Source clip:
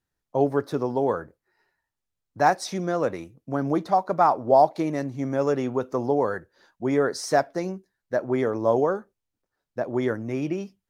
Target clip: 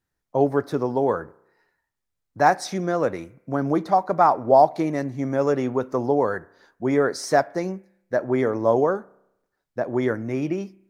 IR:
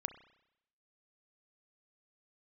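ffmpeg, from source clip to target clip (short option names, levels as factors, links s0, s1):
-filter_complex "[0:a]asplit=2[s0][s1];[s1]highshelf=f=2900:t=q:w=3:g=-8[s2];[1:a]atrim=start_sample=2205[s3];[s2][s3]afir=irnorm=-1:irlink=0,volume=0.316[s4];[s0][s4]amix=inputs=2:normalize=0"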